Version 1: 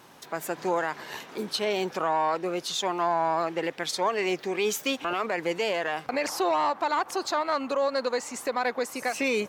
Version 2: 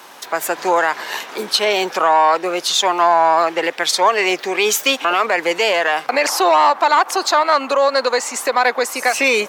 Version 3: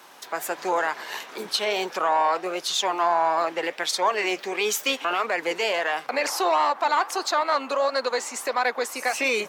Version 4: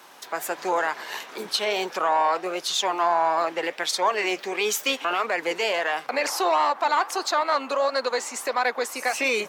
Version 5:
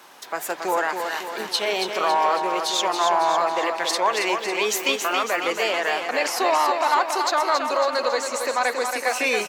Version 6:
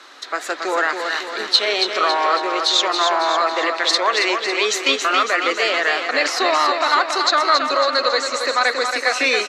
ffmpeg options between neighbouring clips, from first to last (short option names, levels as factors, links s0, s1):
-filter_complex "[0:a]acrossover=split=580[s0][s1];[s1]acontrast=71[s2];[s0][s2]amix=inputs=2:normalize=0,highpass=270,volume=2.24"
-af "flanger=delay=0.5:depth=8:regen=-78:speed=1.5:shape=sinusoidal,volume=0.631"
-af anull
-af "aecho=1:1:276|552|828|1104|1380|1656|1932:0.501|0.276|0.152|0.0834|0.0459|0.0252|0.0139,volume=1.12"
-af "highpass=f=270:w=0.5412,highpass=f=270:w=1.3066,equalizer=f=280:t=q:w=4:g=5,equalizer=f=890:t=q:w=4:g=-7,equalizer=f=1300:t=q:w=4:g=7,equalizer=f=1900:t=q:w=4:g=5,equalizer=f=4000:t=q:w=4:g=10,equalizer=f=9200:t=q:w=4:g=-8,lowpass=f=9300:w=0.5412,lowpass=f=9300:w=1.3066,volume=1.33"